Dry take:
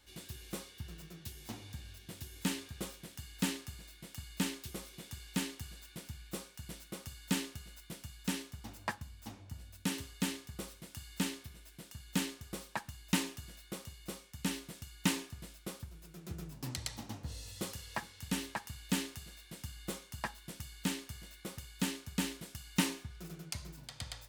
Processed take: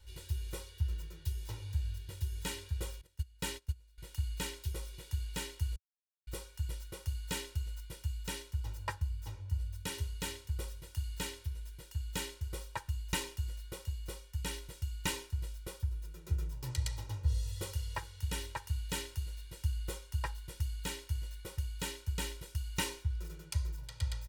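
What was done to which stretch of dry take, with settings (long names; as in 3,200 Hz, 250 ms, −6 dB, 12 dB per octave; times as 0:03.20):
0:03.01–0:03.98: noise gate −45 dBFS, range −20 dB
0:05.76–0:06.27: silence
whole clip: low shelf with overshoot 120 Hz +11.5 dB, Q 1.5; comb filter 2.1 ms, depth 92%; level −4 dB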